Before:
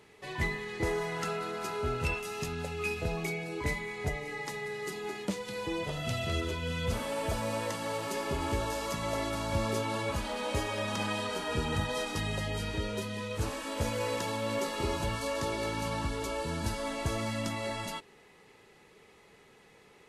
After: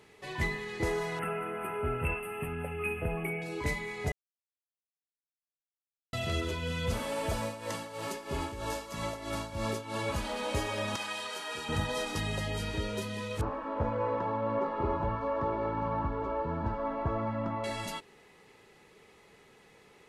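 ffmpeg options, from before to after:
-filter_complex "[0:a]asettb=1/sr,asplit=3[a][b][c];[a]atrim=end=1.194[d];[b]atrim=start=1.19:end=3.42,asetpts=PTS-STARTPTS,afade=t=in:d=0.004:c=qsin,afade=t=out:st=2.226:d=0.004:c=qsin,asuperstop=centerf=5200:order=12:qfactor=0.87[e];[c]atrim=start=3.416[f];[d][e]acrossfade=d=0.004:c1=hsin:c2=qsin[g];[g][f]acrossfade=d=0.004:c1=qsin:c2=hsin,asplit=3[h][i][j];[h]afade=t=out:st=7.37:d=0.02[k];[i]tremolo=f=3.1:d=0.74,afade=t=in:st=7.37:d=0.02,afade=t=out:st=9.95:d=0.02[l];[j]afade=t=in:st=9.95:d=0.02[m];[k][l][m]amix=inputs=3:normalize=0,asettb=1/sr,asplit=3[n][o][p];[n]atrim=end=10.964[q];[o]atrim=start=10.96:end=11.69,asetpts=PTS-STARTPTS,afade=t=in:d=0.004:c=qsin,afade=t=out:st=0.726:d=0.004:c=qsin,highpass=f=1.2k:p=1[r];[p]atrim=start=11.686[s];[q][r]acrossfade=d=0.004:c1=hsin:c2=qsin[t];[t][s]acrossfade=d=0.004:c1=qsin:c2=hsin,asettb=1/sr,asplit=3[u][v][w];[u]atrim=end=13.414[x];[v]atrim=start=13.41:end=17.64,asetpts=PTS-STARTPTS,afade=t=in:d=0.004:c=qsin,afade=t=out:st=4.226:d=0.004:c=qsin,lowpass=f=1.1k:t=q:w=1.7[y];[w]atrim=start=17.636[z];[x][y]acrossfade=d=0.004:c1=hsin:c2=qsin[aa];[aa][z]acrossfade=d=0.004:c1=qsin:c2=hsin,asplit=3[ab][ac][ad];[ab]atrim=end=4.12,asetpts=PTS-STARTPTS,afade=t=out:st=4.116:d=0.004:c=hsin[ae];[ac]atrim=start=4.12:end=6.13,asetpts=PTS-STARTPTS,volume=0[af];[ad]atrim=start=6.13,asetpts=PTS-STARTPTS,afade=t=in:d=0.004:c=hsin[ag];[ae][af][ag]concat=n=3:v=0:a=1"

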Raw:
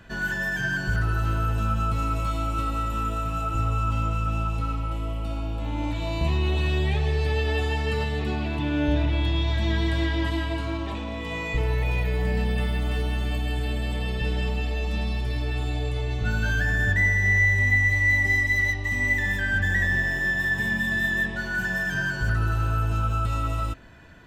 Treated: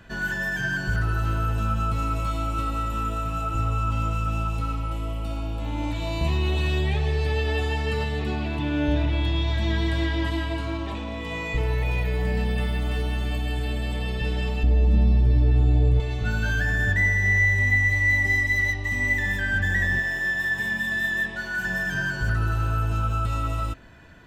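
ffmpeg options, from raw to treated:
-filter_complex "[0:a]asettb=1/sr,asplit=3[a][b][c];[a]atrim=end=4.004[d];[b]atrim=start=4:end=6.81,asetpts=PTS-STARTPTS,afade=t=in:d=0.004:c=qsin,afade=t=out:st=2.806:d=0.004:c=qsin,highshelf=f=5.4k:g=4.5[e];[c]atrim=start=6.806[f];[d][e]acrossfade=d=0.004:c1=hsin:c2=qsin[g];[g][f]acrossfade=d=0.004:c1=qsin:c2=hsin,asettb=1/sr,asplit=3[h][i][j];[h]atrim=end=14.634[k];[i]atrim=start=14.63:end=16,asetpts=PTS-STARTPTS,afade=t=in:d=0.004:c=qsin,afade=t=out:st=1.366:d=0.004:c=qsin,tiltshelf=f=660:g=9.5[l];[j]atrim=start=15.996[m];[k][l]acrossfade=d=0.004:c1=hsin:c2=qsin[n];[n][m]acrossfade=d=0.004:c1=qsin:c2=hsin,asettb=1/sr,asplit=3[o][p][q];[o]atrim=end=19.994[r];[p]atrim=start=19.99:end=21.65,asetpts=PTS-STARTPTS,afade=t=in:d=0.004:c=qsin,afade=t=out:st=1.656:d=0.004:c=qsin,lowshelf=f=350:g=-8[s];[q]atrim=start=21.646[t];[r][s]acrossfade=d=0.004:c1=hsin:c2=qsin[u];[u][t]acrossfade=d=0.004:c1=qsin:c2=hsin"

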